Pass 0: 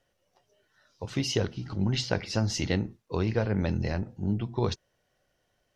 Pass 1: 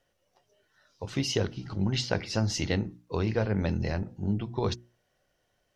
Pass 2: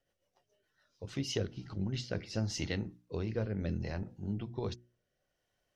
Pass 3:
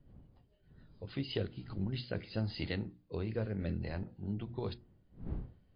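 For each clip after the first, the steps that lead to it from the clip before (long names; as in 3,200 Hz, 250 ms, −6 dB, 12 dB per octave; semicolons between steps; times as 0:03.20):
mains-hum notches 60/120/180/240/300/360 Hz
rotating-speaker cabinet horn 7 Hz, later 0.7 Hz, at 0:00.90; level −5.5 dB
wind on the microphone 140 Hz −50 dBFS; level −1 dB; MP3 32 kbit/s 11,025 Hz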